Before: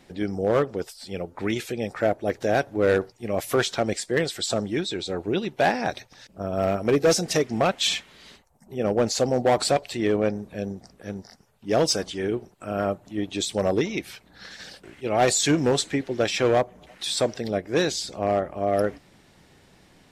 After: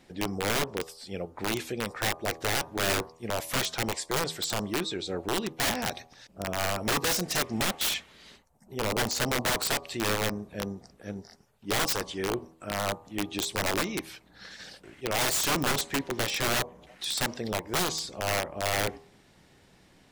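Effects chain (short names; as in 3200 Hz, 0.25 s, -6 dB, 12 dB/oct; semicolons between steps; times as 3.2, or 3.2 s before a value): wrapped overs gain 17.5 dB; de-hum 80.81 Hz, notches 15; gain -3.5 dB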